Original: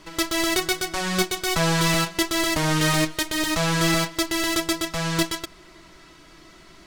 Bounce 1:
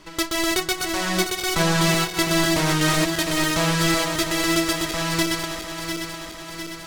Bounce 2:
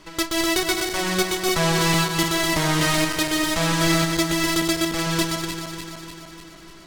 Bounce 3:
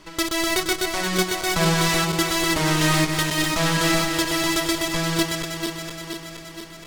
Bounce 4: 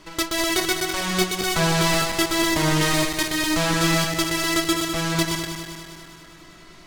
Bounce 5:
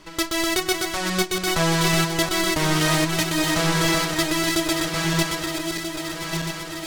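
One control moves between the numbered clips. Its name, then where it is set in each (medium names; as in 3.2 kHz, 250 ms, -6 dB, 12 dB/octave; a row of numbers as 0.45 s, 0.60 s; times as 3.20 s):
backward echo that repeats, time: 351 ms, 149 ms, 236 ms, 101 ms, 642 ms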